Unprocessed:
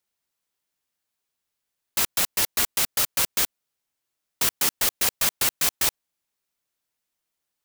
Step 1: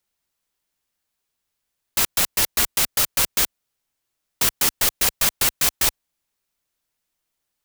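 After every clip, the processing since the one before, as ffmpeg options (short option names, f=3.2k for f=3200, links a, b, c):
-af "lowshelf=f=69:g=9,volume=3dB"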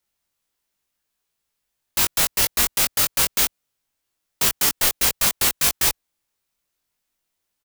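-filter_complex "[0:a]asplit=2[a][b];[b]adelay=20,volume=-3dB[c];[a][c]amix=inputs=2:normalize=0,volume=-1dB"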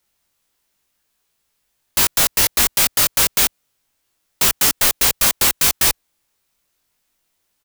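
-af "volume=19.5dB,asoftclip=hard,volume=-19.5dB,volume=8dB"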